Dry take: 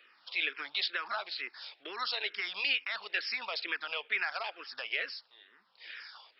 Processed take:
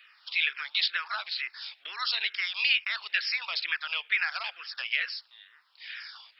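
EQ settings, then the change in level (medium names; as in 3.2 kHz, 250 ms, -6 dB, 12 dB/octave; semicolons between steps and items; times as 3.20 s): high-pass 1.4 kHz 12 dB/octave; +6.0 dB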